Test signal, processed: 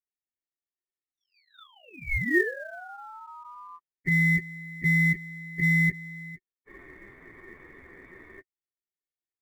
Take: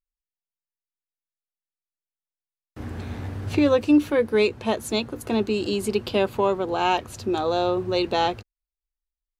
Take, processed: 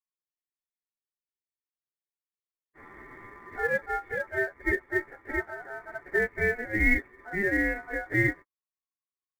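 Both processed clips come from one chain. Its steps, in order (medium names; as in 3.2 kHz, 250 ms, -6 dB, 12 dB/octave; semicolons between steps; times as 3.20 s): frequency axis rescaled in octaves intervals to 113%; cascade formant filter a; in parallel at -6.5 dB: short-mantissa float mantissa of 2-bit; on the sum: ring modulator 1.1 kHz; trim +9 dB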